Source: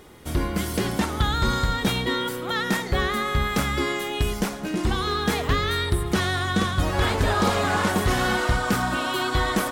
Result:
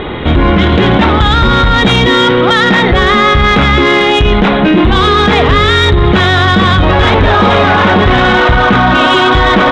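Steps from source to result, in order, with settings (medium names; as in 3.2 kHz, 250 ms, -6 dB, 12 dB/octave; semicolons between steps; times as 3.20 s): Chebyshev low-pass 3.9 kHz, order 8; in parallel at +2 dB: compressor with a negative ratio -28 dBFS, ratio -1; on the sum: saturation -14 dBFS, distortion -18 dB; loudness maximiser +21.5 dB; trim -1 dB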